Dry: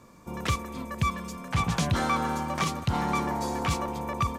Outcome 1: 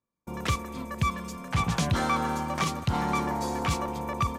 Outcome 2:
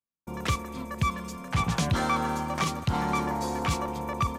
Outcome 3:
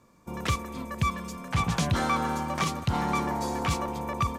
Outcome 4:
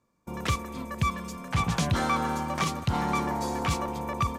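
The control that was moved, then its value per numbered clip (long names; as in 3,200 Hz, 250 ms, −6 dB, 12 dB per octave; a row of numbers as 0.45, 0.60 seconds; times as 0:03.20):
noise gate, range: −35, −50, −7, −20 decibels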